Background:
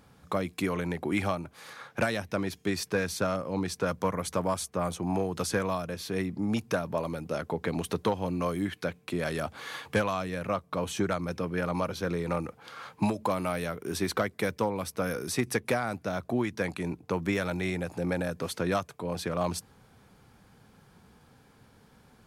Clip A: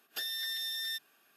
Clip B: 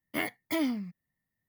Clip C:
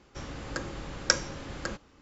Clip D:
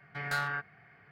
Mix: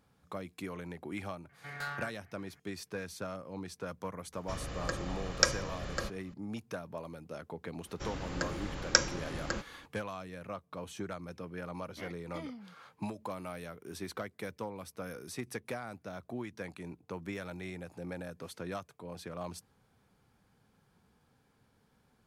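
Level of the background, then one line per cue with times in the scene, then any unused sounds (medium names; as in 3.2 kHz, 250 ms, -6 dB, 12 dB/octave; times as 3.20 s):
background -11.5 dB
1.49 s: add D -7 dB
4.33 s: add C -1.5 dB + comb 1.7 ms, depth 40%
7.85 s: add C -0.5 dB
11.83 s: add B -14.5 dB + low-pass 6.6 kHz
not used: A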